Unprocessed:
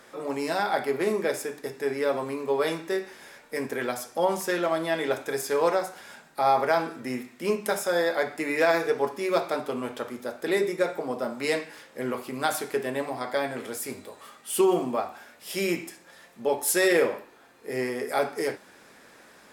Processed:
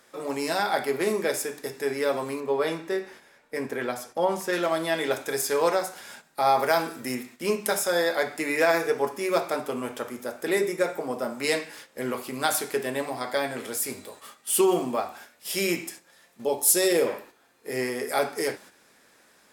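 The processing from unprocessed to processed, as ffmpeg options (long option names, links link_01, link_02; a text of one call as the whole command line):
ffmpeg -i in.wav -filter_complex "[0:a]asettb=1/sr,asplit=3[link_01][link_02][link_03];[link_01]atrim=end=2.404[link_04];[link_02]atrim=start=2.4:end=4.53,asetpts=PTS-STARTPTS,afade=type=in:duration=0.004:curve=qsin,afade=type=out:start_time=2.126:duration=0.004:curve=qsin,highshelf=frequency=3500:gain=-10.5[link_05];[link_03]atrim=start=4.526[link_06];[link_04][link_05]acrossfade=duration=0.004:curve1=hsin:curve2=qsin[link_07];[link_07][link_06]acrossfade=duration=0.004:curve1=qsin:curve2=hsin,asettb=1/sr,asplit=3[link_08][link_09][link_10];[link_08]atrim=end=6.594[link_11];[link_09]atrim=start=6.59:end=7.15,asetpts=PTS-STARTPTS,afade=type=in:duration=0.004:curve=qsin,afade=type=out:start_time=0.556:duration=0.004:curve=qsin,highshelf=frequency=9300:gain=10.5[link_12];[link_10]atrim=start=7.146[link_13];[link_11][link_12]acrossfade=duration=0.004:curve1=hsin:curve2=qsin[link_14];[link_14][link_13]acrossfade=duration=0.004:curve1=qsin:curve2=hsin,asettb=1/sr,asplit=3[link_15][link_16][link_17];[link_15]atrim=end=8.564[link_18];[link_16]atrim=start=8.56:end=11.44,asetpts=PTS-STARTPTS,afade=type=in:duration=0.004:curve=qsin,afade=type=out:start_time=2.876:duration=0.004:curve=qsin,equalizer=frequency=4000:width_type=o:width=0.64:gain=-5.5[link_19];[link_17]atrim=start=11.436[link_20];[link_18][link_19]acrossfade=duration=0.004:curve1=hsin:curve2=qsin[link_21];[link_21][link_20]acrossfade=duration=0.004:curve1=qsin:curve2=hsin,asettb=1/sr,asplit=3[link_22][link_23][link_24];[link_22]atrim=end=16.444[link_25];[link_23]atrim=start=16.44:end=17.07,asetpts=PTS-STARTPTS,afade=type=in:duration=0.004:curve=qsin,afade=type=out:start_time=0.626:duration=0.004:curve=qsin,equalizer=frequency=1700:width=1:gain=-9[link_26];[link_24]atrim=start=17.066[link_27];[link_25][link_26]acrossfade=duration=0.004:curve1=hsin:curve2=qsin[link_28];[link_28][link_27]acrossfade=duration=0.004:curve1=qsin:curve2=hsin,agate=range=-8dB:threshold=-47dB:ratio=16:detection=peak,highshelf=frequency=3400:gain=7" out.wav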